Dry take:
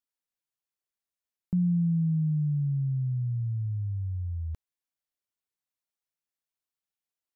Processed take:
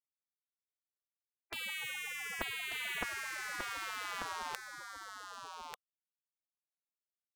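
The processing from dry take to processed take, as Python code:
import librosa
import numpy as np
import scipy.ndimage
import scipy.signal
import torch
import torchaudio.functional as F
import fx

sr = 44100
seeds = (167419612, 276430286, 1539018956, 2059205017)

y = fx.low_shelf(x, sr, hz=140.0, db=6.5, at=(2.41, 3.03))
y = fx.rider(y, sr, range_db=3, speed_s=2.0)
y = fx.leveller(y, sr, passes=5)
y = fx.spec_gate(y, sr, threshold_db=-30, keep='weak')
y = y + 10.0 ** (-5.5 / 20.0) * np.pad(y, (int(1191 * sr / 1000.0), 0))[:len(y)]
y = y * librosa.db_to_amplitude(8.5)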